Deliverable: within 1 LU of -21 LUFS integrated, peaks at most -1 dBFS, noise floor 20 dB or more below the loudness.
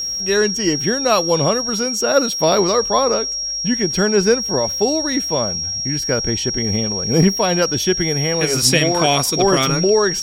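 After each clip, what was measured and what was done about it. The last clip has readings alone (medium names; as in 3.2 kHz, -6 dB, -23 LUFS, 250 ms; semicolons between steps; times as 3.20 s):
tick rate 46 per s; steady tone 5.6 kHz; tone level -21 dBFS; loudness -16.5 LUFS; peak level -2.0 dBFS; loudness target -21.0 LUFS
-> de-click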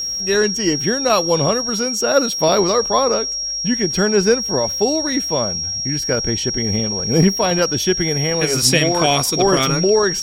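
tick rate 0.59 per s; steady tone 5.6 kHz; tone level -21 dBFS
-> band-stop 5.6 kHz, Q 30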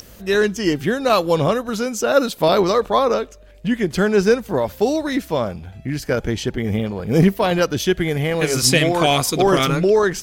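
steady tone not found; loudness -18.5 LUFS; peak level -2.0 dBFS; loudness target -21.0 LUFS
-> trim -2.5 dB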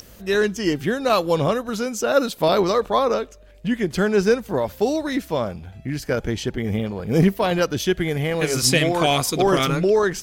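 loudness -21.0 LUFS; peak level -4.5 dBFS; noise floor -46 dBFS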